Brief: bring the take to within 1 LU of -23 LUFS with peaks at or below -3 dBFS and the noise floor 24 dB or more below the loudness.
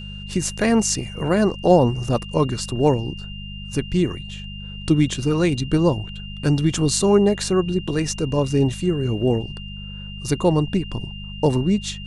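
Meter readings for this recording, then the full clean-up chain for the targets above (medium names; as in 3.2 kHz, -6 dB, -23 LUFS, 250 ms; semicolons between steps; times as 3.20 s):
hum 50 Hz; highest harmonic 200 Hz; hum level -33 dBFS; steady tone 2.8 kHz; tone level -37 dBFS; loudness -21.0 LUFS; peak level -3.0 dBFS; loudness target -23.0 LUFS
-> de-hum 50 Hz, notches 4; band-stop 2.8 kHz, Q 30; trim -2 dB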